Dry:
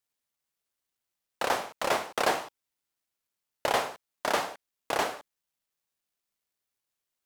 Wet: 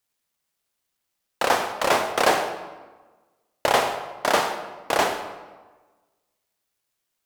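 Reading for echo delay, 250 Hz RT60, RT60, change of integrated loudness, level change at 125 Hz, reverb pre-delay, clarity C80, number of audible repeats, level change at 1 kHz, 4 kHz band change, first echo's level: none, 1.4 s, 1.3 s, +7.0 dB, +7.5 dB, 28 ms, 10.0 dB, none, +7.5 dB, +7.0 dB, none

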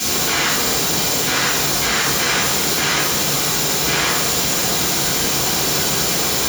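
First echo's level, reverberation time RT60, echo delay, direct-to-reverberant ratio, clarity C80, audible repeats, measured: none, 1.2 s, none, -9.5 dB, 2.5 dB, none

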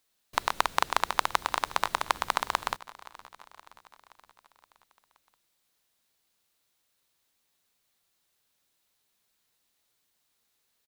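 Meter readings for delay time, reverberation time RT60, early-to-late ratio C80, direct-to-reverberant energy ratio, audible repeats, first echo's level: 0.522 s, none, none, none, 4, -20.0 dB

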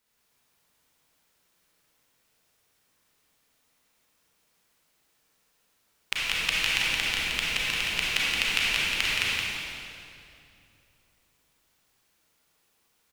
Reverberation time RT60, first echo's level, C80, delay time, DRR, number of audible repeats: 2.6 s, -3.5 dB, -3.5 dB, 0.171 s, -8.0 dB, 1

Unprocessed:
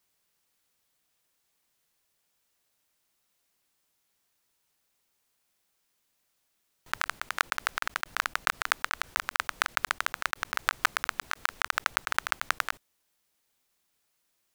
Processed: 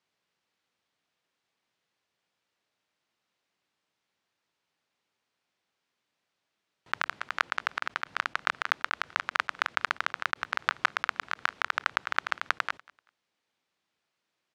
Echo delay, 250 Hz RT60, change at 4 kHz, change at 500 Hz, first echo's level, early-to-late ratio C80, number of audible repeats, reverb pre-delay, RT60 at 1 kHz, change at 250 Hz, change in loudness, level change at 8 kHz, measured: 0.193 s, none, -2.0 dB, 0.0 dB, -23.5 dB, none, 1, none, none, 0.0 dB, -0.5 dB, -11.0 dB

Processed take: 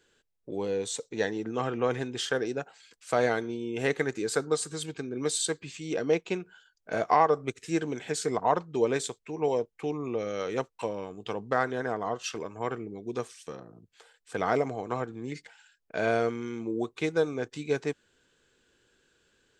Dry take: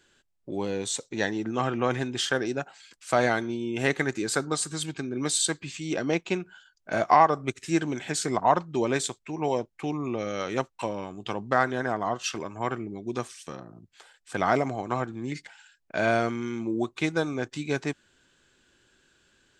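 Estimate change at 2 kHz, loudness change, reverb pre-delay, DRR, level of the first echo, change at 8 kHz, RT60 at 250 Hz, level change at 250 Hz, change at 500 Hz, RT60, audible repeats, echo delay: -4.5 dB, -2.5 dB, none, none, none, -4.5 dB, none, -4.0 dB, 0.0 dB, none, none, none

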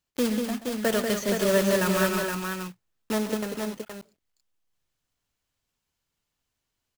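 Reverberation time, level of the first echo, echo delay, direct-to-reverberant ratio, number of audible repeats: none, -13.5 dB, 0.129 s, none, 3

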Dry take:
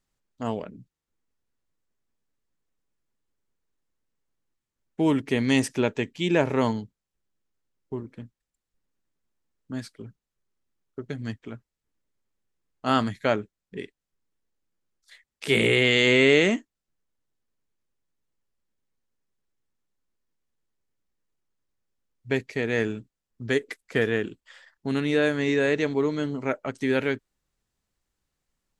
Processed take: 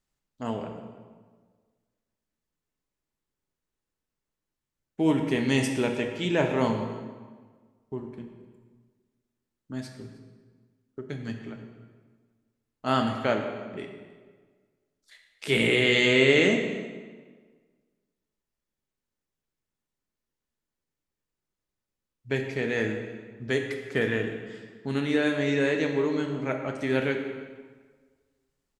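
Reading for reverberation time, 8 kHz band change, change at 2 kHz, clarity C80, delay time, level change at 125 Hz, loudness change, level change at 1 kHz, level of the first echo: 1.5 s, -2.0 dB, -1.0 dB, 7.0 dB, 0.307 s, -1.0 dB, -2.0 dB, -1.5 dB, -22.0 dB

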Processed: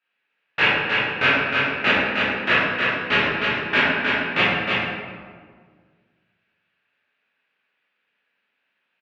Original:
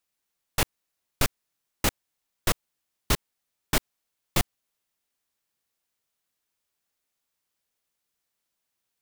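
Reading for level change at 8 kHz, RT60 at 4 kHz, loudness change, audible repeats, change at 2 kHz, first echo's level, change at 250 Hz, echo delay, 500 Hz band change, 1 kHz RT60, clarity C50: under -15 dB, 0.95 s, +10.0 dB, 1, +19.0 dB, -4.0 dB, +9.0 dB, 0.312 s, +11.0 dB, 1.6 s, -4.5 dB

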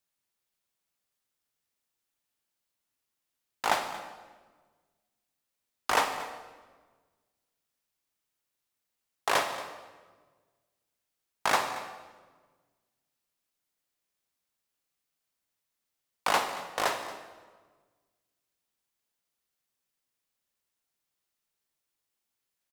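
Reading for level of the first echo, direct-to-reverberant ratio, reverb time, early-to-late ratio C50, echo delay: -17.0 dB, 7.0 dB, 1.4 s, 8.0 dB, 0.229 s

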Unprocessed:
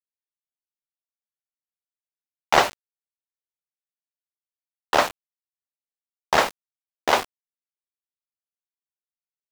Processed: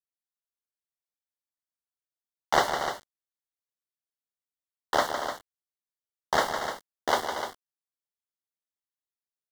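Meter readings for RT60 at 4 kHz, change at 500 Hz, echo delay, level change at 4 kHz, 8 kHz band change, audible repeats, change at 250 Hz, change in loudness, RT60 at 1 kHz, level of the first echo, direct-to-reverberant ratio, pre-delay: none, -4.5 dB, 0.157 s, -5.5 dB, -4.5 dB, 3, -4.5 dB, -6.5 dB, none, -8.0 dB, none, none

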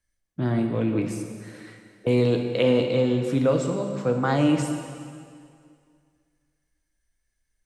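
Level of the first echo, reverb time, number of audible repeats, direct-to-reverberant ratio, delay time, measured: none, 2.2 s, none, 4.0 dB, none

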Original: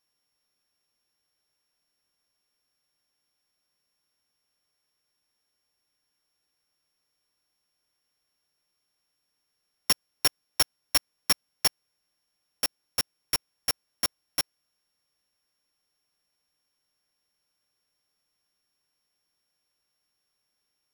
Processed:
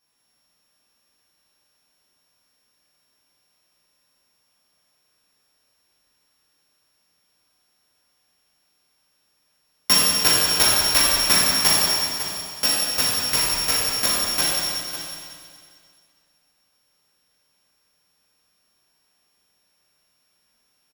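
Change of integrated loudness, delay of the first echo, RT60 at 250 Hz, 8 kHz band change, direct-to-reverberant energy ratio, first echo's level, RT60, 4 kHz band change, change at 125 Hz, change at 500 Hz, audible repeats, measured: +10.5 dB, 0.551 s, 2.4 s, +12.0 dB, -8.5 dB, -11.0 dB, 2.3 s, +11.0 dB, +12.5 dB, +12.5 dB, 1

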